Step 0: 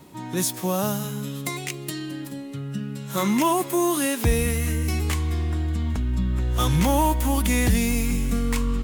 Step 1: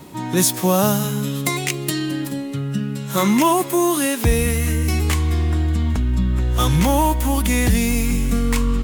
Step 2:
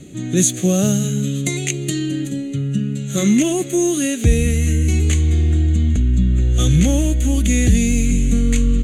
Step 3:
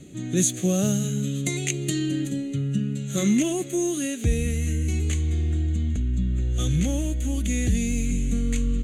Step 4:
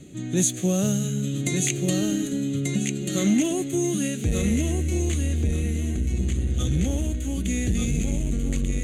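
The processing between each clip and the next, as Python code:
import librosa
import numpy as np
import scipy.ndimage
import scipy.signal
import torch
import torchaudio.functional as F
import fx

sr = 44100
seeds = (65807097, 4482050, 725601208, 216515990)

y1 = fx.rider(x, sr, range_db=4, speed_s=2.0)
y1 = y1 * 10.0 ** (5.0 / 20.0)
y2 = fx.lowpass_res(y1, sr, hz=6400.0, q=7.2)
y2 = fx.peak_eq(y2, sr, hz=1600.0, db=-8.5, octaves=2.2)
y2 = fx.fixed_phaser(y2, sr, hz=2300.0, stages=4)
y2 = y2 * 10.0 ** (4.0 / 20.0)
y3 = fx.rider(y2, sr, range_db=10, speed_s=2.0)
y3 = y3 * 10.0 ** (-8.0 / 20.0)
y4 = fx.echo_feedback(y3, sr, ms=1188, feedback_pct=25, wet_db=-4)
y4 = fx.transformer_sat(y4, sr, knee_hz=200.0)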